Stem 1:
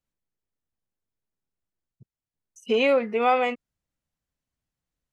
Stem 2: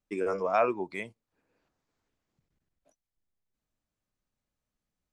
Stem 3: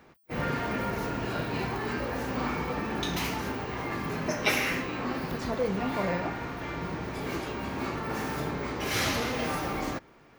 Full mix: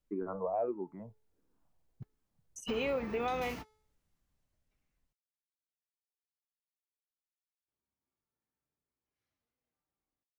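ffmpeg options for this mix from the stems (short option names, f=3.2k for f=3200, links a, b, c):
-filter_complex "[0:a]acompressor=threshold=-35dB:ratio=2,dynaudnorm=f=110:g=17:m=5dB,volume=-1.5dB,asplit=2[a][b];[1:a]lowpass=f=1.1k:w=0.5412,lowpass=f=1.1k:w=1.3066,asplit=2[c][d];[d]afreqshift=-1.5[e];[c][e]amix=inputs=2:normalize=1,volume=-1.5dB[f];[2:a]adelay=250,volume=-8.5dB,asplit=3[g][h][i];[g]atrim=end=5.06,asetpts=PTS-STARTPTS,afade=t=out:st=5.056:d=0.004:c=hsin[j];[h]atrim=start=5.06:end=7.68,asetpts=PTS-STARTPTS,volume=0[k];[i]atrim=start=7.68,asetpts=PTS-STARTPTS,afade=t=in:d=0.004:c=hsin[l];[j][k][l]concat=n=3:v=0:a=1[m];[b]apad=whole_len=469097[n];[m][n]sidechaingate=range=-56dB:threshold=-42dB:ratio=16:detection=peak[o];[a][f][o]amix=inputs=3:normalize=0,lowshelf=f=65:g=10.5,bandreject=f=431:t=h:w=4,bandreject=f=862:t=h:w=4,bandreject=f=1.293k:t=h:w=4,bandreject=f=1.724k:t=h:w=4,bandreject=f=2.155k:t=h:w=4,bandreject=f=2.586k:t=h:w=4,bandreject=f=3.017k:t=h:w=4,bandreject=f=3.448k:t=h:w=4,bandreject=f=3.879k:t=h:w=4,bandreject=f=4.31k:t=h:w=4,bandreject=f=4.741k:t=h:w=4,bandreject=f=5.172k:t=h:w=4,bandreject=f=5.603k:t=h:w=4,bandreject=f=6.034k:t=h:w=4,bandreject=f=6.465k:t=h:w=4,bandreject=f=6.896k:t=h:w=4,bandreject=f=7.327k:t=h:w=4,bandreject=f=7.758k:t=h:w=4,bandreject=f=8.189k:t=h:w=4,bandreject=f=8.62k:t=h:w=4,bandreject=f=9.051k:t=h:w=4,bandreject=f=9.482k:t=h:w=4,bandreject=f=9.913k:t=h:w=4,bandreject=f=10.344k:t=h:w=4,bandreject=f=10.775k:t=h:w=4,bandreject=f=11.206k:t=h:w=4,bandreject=f=11.637k:t=h:w=4,alimiter=level_in=1dB:limit=-24dB:level=0:latency=1:release=411,volume=-1dB"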